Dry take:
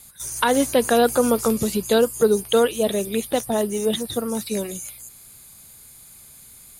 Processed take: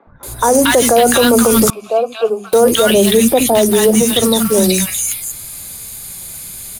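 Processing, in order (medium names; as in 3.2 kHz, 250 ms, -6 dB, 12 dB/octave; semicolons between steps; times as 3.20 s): block-companded coder 5-bit; three bands offset in time mids, lows, highs 70/230 ms, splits 260/1200 Hz; flange 0.55 Hz, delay 3 ms, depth 3 ms, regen +74%; 1.70–2.53 s: vowel filter a; loudness maximiser +22 dB; trim -1 dB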